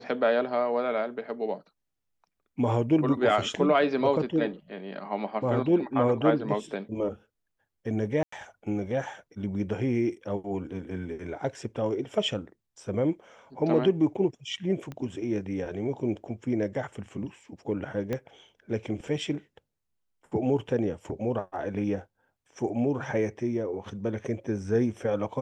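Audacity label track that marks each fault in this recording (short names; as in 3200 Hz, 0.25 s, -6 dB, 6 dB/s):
8.230000	8.320000	gap 94 ms
14.920000	14.920000	pop -25 dBFS
18.130000	18.130000	pop -18 dBFS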